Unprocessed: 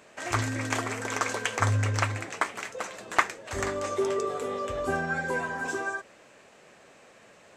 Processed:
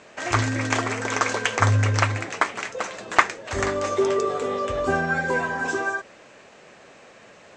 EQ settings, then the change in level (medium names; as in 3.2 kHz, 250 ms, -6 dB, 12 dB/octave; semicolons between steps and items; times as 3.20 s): low-pass 7.3 kHz 24 dB/octave; +6.0 dB